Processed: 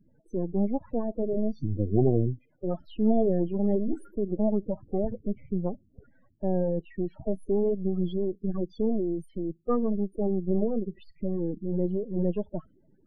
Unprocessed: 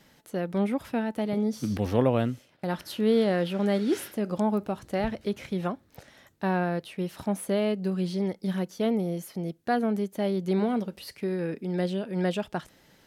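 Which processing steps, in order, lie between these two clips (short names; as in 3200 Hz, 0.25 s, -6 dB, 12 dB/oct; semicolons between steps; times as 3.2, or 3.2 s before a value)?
half-wave gain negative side -12 dB; loudest bins only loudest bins 16; formant shift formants -5 st; gain +3.5 dB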